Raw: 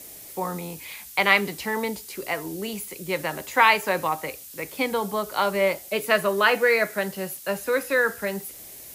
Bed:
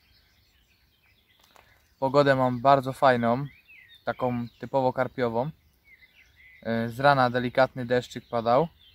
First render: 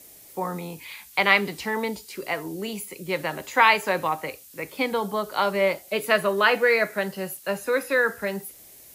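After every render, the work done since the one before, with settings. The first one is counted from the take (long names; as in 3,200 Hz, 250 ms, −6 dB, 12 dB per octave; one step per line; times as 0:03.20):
noise reduction from a noise print 6 dB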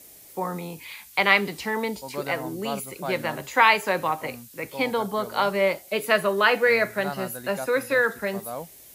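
mix in bed −13 dB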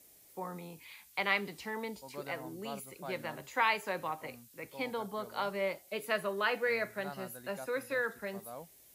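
level −12 dB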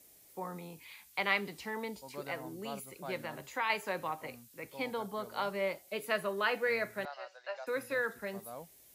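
0:03.18–0:03.70: downward compressor 1.5 to 1, threshold −37 dBFS
0:07.05–0:07.67: elliptic band-pass filter 580–5,300 Hz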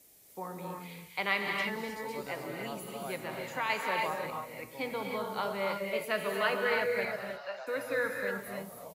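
single-tap delay 252 ms −18.5 dB
reverb whose tail is shaped and stops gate 340 ms rising, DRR 1 dB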